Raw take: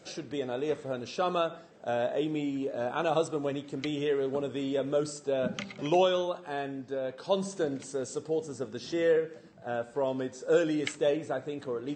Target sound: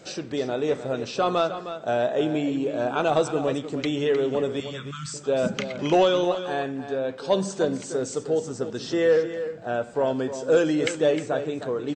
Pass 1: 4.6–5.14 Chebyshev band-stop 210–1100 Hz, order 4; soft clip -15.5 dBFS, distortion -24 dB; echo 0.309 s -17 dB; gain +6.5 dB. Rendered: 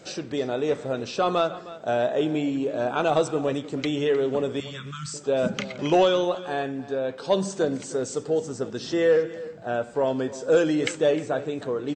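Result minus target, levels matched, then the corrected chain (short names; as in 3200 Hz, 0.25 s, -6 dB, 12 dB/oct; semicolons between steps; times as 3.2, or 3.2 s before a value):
echo-to-direct -6 dB
4.6–5.14 Chebyshev band-stop 210–1100 Hz, order 4; soft clip -15.5 dBFS, distortion -24 dB; echo 0.309 s -11 dB; gain +6.5 dB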